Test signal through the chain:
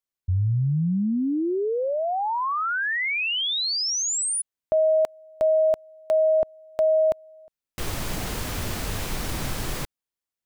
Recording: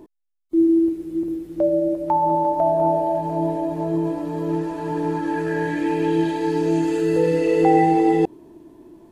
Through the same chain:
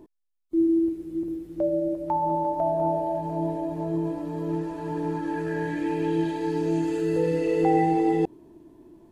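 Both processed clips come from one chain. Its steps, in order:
low-shelf EQ 200 Hz +5 dB
level −6.5 dB

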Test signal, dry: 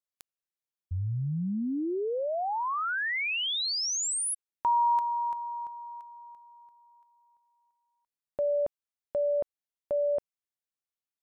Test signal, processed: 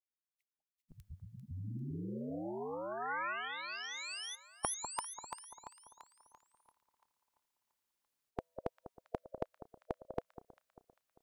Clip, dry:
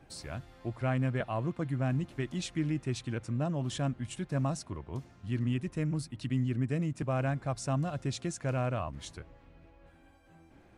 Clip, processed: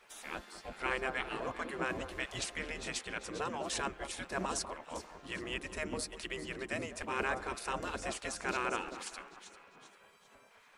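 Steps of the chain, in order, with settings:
delay that swaps between a low-pass and a high-pass 198 ms, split 1,300 Hz, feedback 62%, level −11 dB
gate on every frequency bin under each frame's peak −15 dB weak
level +7 dB

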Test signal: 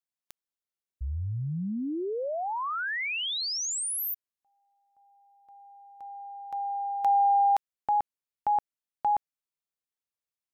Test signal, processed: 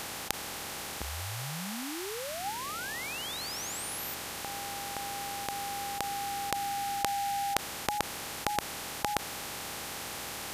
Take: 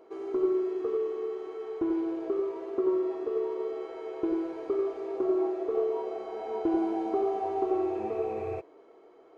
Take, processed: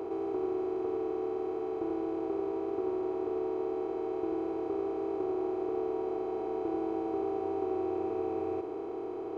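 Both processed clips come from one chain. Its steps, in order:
compressor on every frequency bin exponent 0.2
level −11 dB

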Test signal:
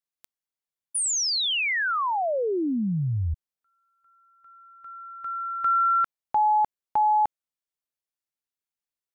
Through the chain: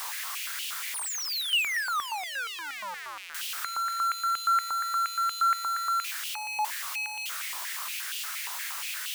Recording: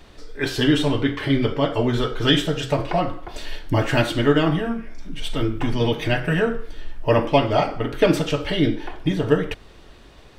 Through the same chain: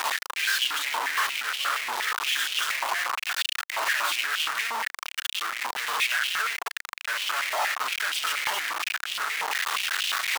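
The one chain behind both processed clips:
sign of each sample alone
high-pass on a step sequencer 8.5 Hz 950–2,900 Hz
level −6 dB

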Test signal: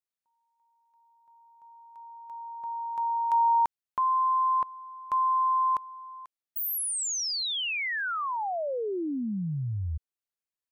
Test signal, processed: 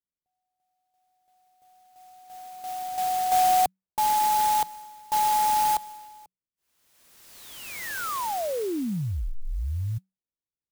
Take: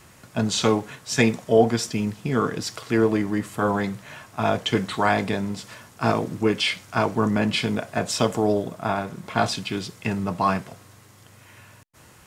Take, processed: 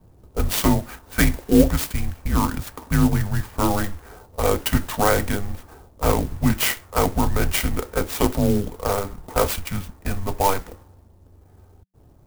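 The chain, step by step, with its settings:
frequency shifter −190 Hz
low-pass that shuts in the quiet parts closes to 420 Hz, open at −19 dBFS
converter with an unsteady clock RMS 0.063 ms
level +2.5 dB

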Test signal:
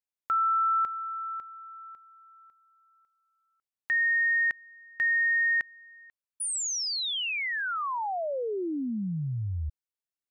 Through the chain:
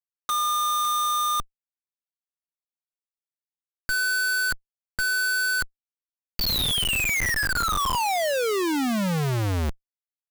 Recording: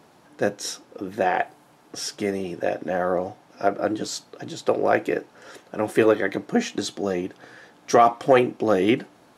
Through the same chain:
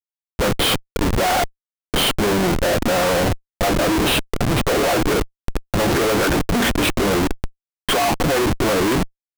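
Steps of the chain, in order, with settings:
hearing-aid frequency compression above 1,000 Hz 1.5 to 1
comparator with hysteresis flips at −34.5 dBFS
level +7 dB

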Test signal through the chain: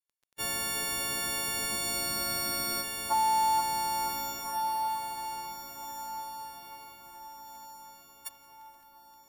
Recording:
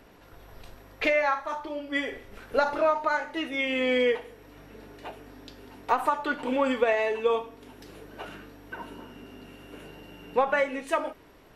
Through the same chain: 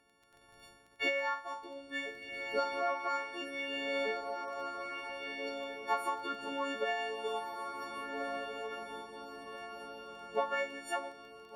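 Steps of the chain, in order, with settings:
every partial snapped to a pitch grid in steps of 4 semitones
low-pass filter 1,000 Hz 6 dB per octave
noise gate −50 dBFS, range −7 dB
spectral tilt +3.5 dB per octave
harmonic and percussive parts rebalanced harmonic −8 dB
feedback delay with all-pass diffusion 1,565 ms, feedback 41%, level −4 dB
surface crackle 12 per second −50 dBFS

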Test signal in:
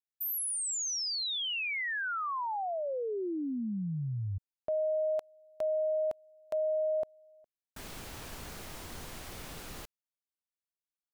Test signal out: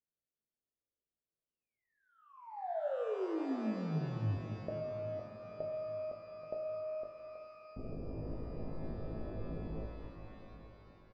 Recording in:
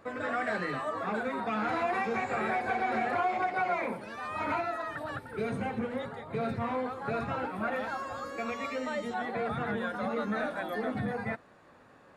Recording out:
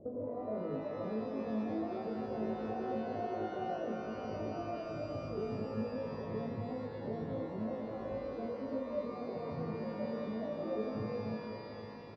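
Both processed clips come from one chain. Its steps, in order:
Butterworth low-pass 600 Hz 36 dB per octave
downward compressor 6 to 1, threshold −43 dBFS
tuned comb filter 54 Hz, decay 0.3 s, harmonics all, mix 90%
on a send: repeating echo 830 ms, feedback 38%, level −16 dB
on the sum: reverb with rising layers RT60 3.4 s, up +12 semitones, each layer −8 dB, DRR 4.5 dB
level +12 dB

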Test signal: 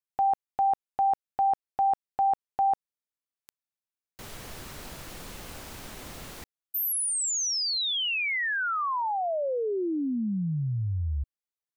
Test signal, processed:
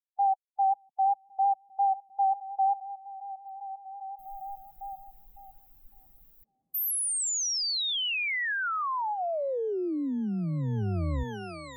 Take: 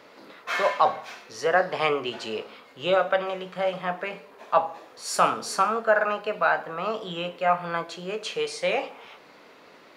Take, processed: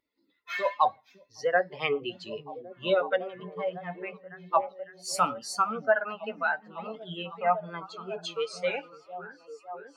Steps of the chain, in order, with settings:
spectral dynamics exaggerated over time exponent 2
echo through a band-pass that steps 555 ms, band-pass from 190 Hz, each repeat 0.7 octaves, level −6 dB
pitch vibrato 5.6 Hz 33 cents

